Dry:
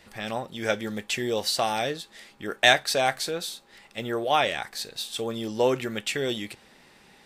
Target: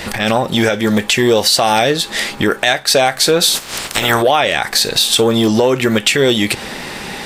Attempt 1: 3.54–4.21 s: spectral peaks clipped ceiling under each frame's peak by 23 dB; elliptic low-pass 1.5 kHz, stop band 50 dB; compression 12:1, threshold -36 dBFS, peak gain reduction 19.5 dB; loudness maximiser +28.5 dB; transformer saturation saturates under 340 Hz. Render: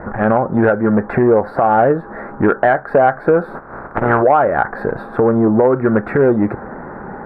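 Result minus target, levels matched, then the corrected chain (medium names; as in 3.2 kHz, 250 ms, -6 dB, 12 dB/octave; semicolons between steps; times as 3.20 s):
2 kHz band -3.5 dB
3.54–4.21 s: spectral peaks clipped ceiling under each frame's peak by 23 dB; compression 12:1, threshold -36 dBFS, peak gain reduction 23.5 dB; loudness maximiser +28.5 dB; transformer saturation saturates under 340 Hz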